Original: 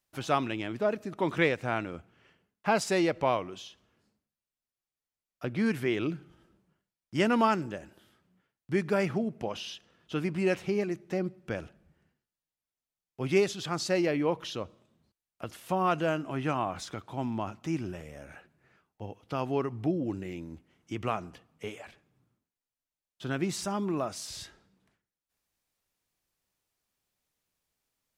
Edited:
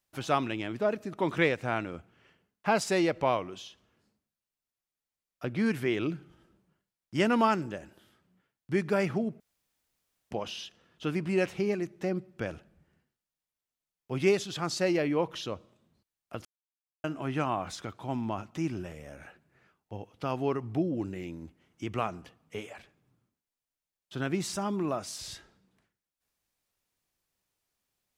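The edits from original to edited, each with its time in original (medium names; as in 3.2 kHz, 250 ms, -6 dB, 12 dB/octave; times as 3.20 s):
9.40 s: insert room tone 0.91 s
15.54–16.13 s: mute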